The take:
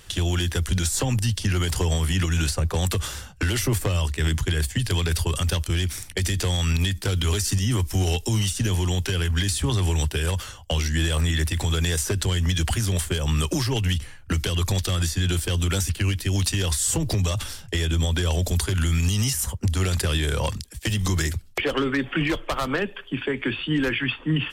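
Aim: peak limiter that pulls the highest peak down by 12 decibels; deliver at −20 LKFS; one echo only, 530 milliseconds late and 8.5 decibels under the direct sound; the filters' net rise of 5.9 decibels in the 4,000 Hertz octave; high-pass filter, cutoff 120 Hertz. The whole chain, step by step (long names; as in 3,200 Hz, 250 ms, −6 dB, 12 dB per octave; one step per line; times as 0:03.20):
high-pass filter 120 Hz
parametric band 4,000 Hz +8 dB
brickwall limiter −20 dBFS
single-tap delay 530 ms −8.5 dB
level +8.5 dB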